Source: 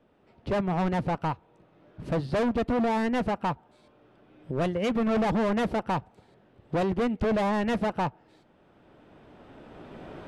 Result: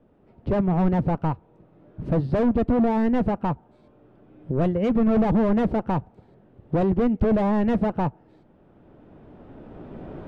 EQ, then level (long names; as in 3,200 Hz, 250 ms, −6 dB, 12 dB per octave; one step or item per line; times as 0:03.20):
spectral tilt −4 dB per octave
low-shelf EQ 110 Hz −10.5 dB
0.0 dB